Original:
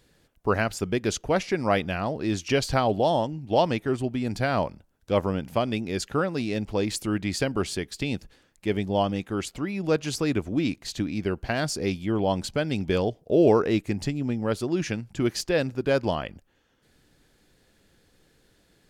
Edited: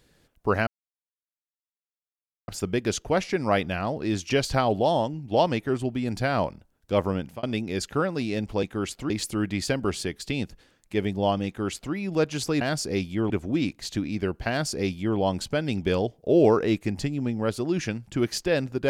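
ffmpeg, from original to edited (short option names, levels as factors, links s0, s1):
-filter_complex "[0:a]asplit=7[s0][s1][s2][s3][s4][s5][s6];[s0]atrim=end=0.67,asetpts=PTS-STARTPTS,afade=t=out:st=0.666:d=0.004:c=hsin,apad=pad_dur=1.81[s7];[s1]atrim=start=0.67:end=5.62,asetpts=PTS-STARTPTS,afade=t=in:d=0.004:c=hsin,afade=t=out:st=4.66:d=0.29:c=qsin[s8];[s2]atrim=start=5.62:end=6.822,asetpts=PTS-STARTPTS,afade=t=in:d=0.004:c=hsin[s9];[s3]atrim=start=9.188:end=9.662[s10];[s4]atrim=start=6.818:end=10.332[s11];[s5]atrim=start=11.518:end=12.212[s12];[s6]atrim=start=10.328[s13];[s7][s8][s9]concat=n=3:v=0:a=1[s14];[s14][s10]acrossfade=d=0.004:c1=hsin:c2=hsin[s15];[s15][s11]acrossfade=d=0.004:c1=hsin:c2=hsin[s16];[s16][s12]acrossfade=d=0.004:c1=hsin:c2=hsin[s17];[s17][s13]acrossfade=d=0.004:c1=hsin:c2=hsin"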